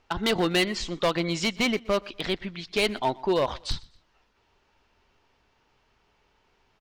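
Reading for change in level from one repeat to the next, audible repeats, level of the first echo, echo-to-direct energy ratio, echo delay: -9.5 dB, 2, -23.0 dB, -22.5 dB, 0.123 s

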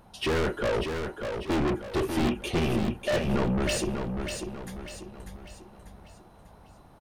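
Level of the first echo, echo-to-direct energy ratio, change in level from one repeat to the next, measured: -6.0 dB, -5.0 dB, -7.5 dB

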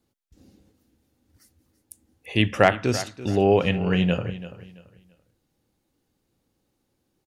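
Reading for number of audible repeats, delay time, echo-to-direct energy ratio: 2, 0.336 s, -14.5 dB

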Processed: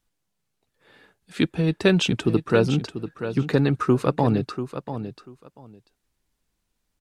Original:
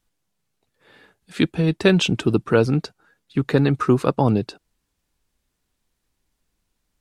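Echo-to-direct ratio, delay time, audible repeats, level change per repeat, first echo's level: -10.5 dB, 0.69 s, 2, -15.5 dB, -10.5 dB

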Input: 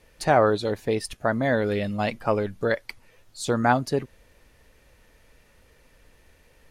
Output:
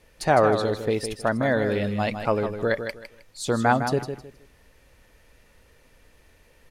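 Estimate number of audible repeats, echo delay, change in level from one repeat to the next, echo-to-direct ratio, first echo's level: 3, 0.157 s, -12.0 dB, -8.0 dB, -8.5 dB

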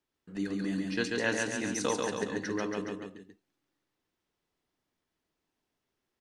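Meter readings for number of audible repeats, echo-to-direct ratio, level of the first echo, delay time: 3, -1.5 dB, -3.0 dB, 0.139 s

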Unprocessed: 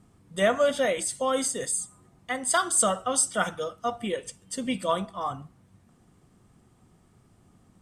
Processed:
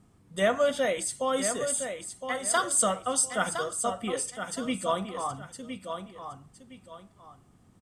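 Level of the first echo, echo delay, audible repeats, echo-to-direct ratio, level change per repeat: -8.0 dB, 1.013 s, 2, -7.5 dB, -11.0 dB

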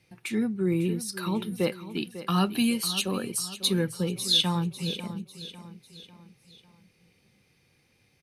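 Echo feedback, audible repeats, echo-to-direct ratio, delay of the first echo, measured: 46%, 4, -12.5 dB, 0.548 s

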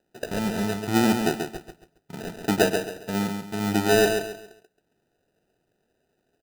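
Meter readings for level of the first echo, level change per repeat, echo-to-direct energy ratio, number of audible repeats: -6.0 dB, -10.0 dB, -5.5 dB, 3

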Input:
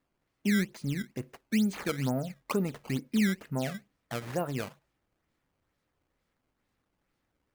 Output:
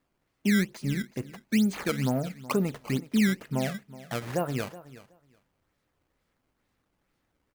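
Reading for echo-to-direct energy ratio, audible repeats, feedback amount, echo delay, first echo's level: -17.5 dB, 2, 16%, 0.372 s, -17.5 dB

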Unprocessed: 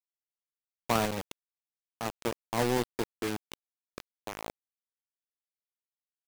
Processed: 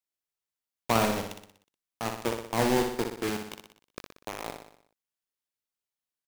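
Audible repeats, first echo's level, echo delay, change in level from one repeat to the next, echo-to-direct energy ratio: 6, -6.0 dB, 61 ms, -5.5 dB, -4.5 dB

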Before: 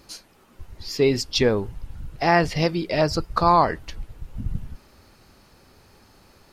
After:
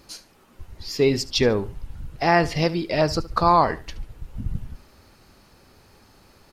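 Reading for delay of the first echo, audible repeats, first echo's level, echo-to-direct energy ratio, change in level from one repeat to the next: 73 ms, 2, -18.0 dB, -17.5 dB, -11.5 dB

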